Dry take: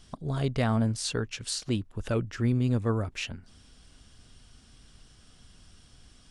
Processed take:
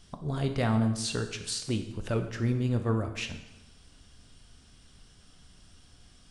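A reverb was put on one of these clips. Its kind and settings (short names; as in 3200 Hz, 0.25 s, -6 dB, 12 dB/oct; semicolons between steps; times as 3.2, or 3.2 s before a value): plate-style reverb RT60 0.96 s, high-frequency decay 0.9×, DRR 6 dB; gain -1.5 dB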